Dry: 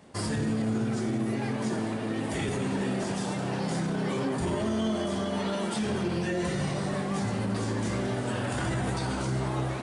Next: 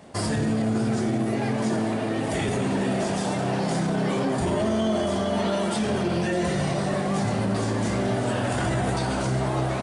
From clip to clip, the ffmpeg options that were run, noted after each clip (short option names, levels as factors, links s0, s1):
-filter_complex "[0:a]equalizer=f=670:w=3.8:g=6,aecho=1:1:606:0.237,asplit=2[s0][s1];[s1]alimiter=limit=0.0631:level=0:latency=1,volume=0.841[s2];[s0][s2]amix=inputs=2:normalize=0"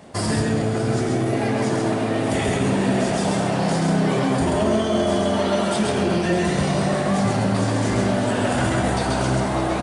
-af "aecho=1:1:134:0.708,volume=1.41"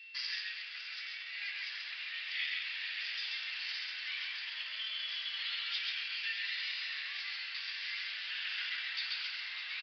-af "aeval=exprs='val(0)+0.00501*sin(2*PI*2700*n/s)':c=same,asuperpass=centerf=3900:order=8:qfactor=0.72,aresample=11025,aresample=44100,volume=0.668"